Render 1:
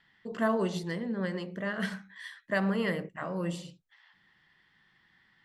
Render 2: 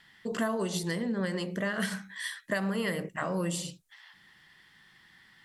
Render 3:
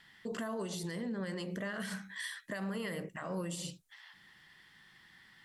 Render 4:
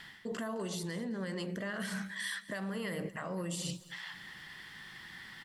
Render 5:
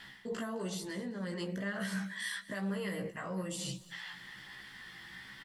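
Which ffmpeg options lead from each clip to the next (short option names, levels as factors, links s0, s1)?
-af "equalizer=f=10000:t=o:w=1.6:g=14,acompressor=threshold=0.0224:ratio=6,volume=1.88"
-af "alimiter=level_in=1.78:limit=0.0631:level=0:latency=1:release=105,volume=0.562,volume=0.841"
-af "areverse,acompressor=threshold=0.00447:ratio=6,areverse,aecho=1:1:212|424|636:0.119|0.0416|0.0146,volume=3.55"
-filter_complex "[0:a]flanger=delay=15:depth=2.5:speed=1.1,asplit=2[s0][s1];[s1]adelay=15,volume=0.266[s2];[s0][s2]amix=inputs=2:normalize=0,volume=1.26"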